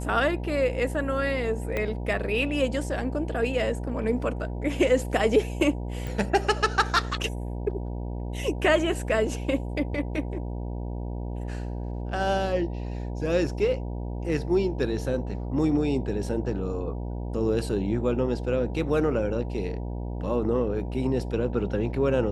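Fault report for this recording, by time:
mains buzz 60 Hz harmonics 16 −32 dBFS
0:01.77: click −15 dBFS
0:06.07: click

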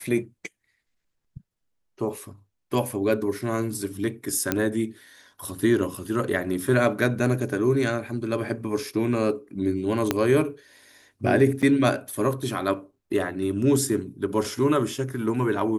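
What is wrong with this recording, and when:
0:04.52: click −7 dBFS
0:10.11: click −6 dBFS
0:11.62–0:11.63: drop-out 7 ms

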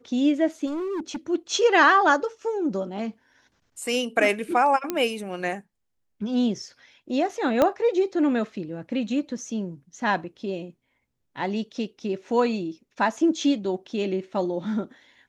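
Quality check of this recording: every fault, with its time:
0:00.66–0:01.16: clipping −26.5 dBFS
0:04.90: click −11 dBFS
0:07.62: click −8 dBFS

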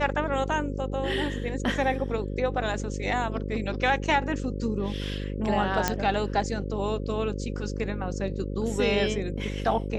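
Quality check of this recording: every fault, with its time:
mains buzz 50 Hz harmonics 11 −32 dBFS
0:05.88: click −7 dBFS

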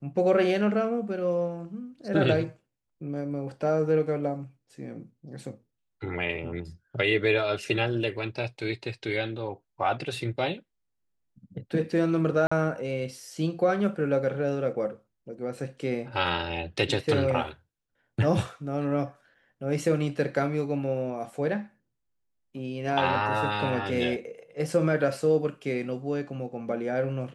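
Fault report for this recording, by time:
0:12.47–0:12.52: drop-out 45 ms

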